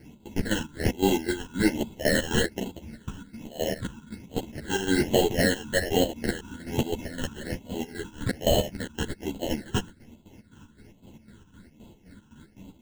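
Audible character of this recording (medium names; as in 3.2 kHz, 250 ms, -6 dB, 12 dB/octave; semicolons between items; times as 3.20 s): aliases and images of a low sample rate 1.2 kHz, jitter 0%; phasing stages 8, 1.2 Hz, lowest notch 610–1700 Hz; chopped level 3.9 Hz, depth 65%, duty 55%; a shimmering, thickened sound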